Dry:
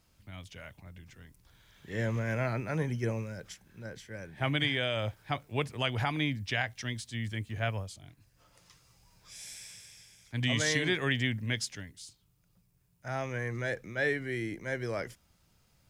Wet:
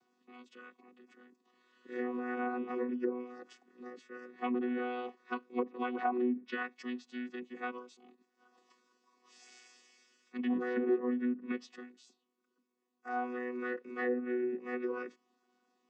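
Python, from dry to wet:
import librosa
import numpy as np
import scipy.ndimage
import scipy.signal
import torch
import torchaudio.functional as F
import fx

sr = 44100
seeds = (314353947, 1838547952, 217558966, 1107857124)

y = fx.chord_vocoder(x, sr, chord='bare fifth', root=59)
y = fx.env_lowpass_down(y, sr, base_hz=790.0, full_db=-26.0)
y = fx.peak_eq(y, sr, hz=1000.0, db=5.5, octaves=1.3)
y = y * librosa.db_to_amplitude(-3.0)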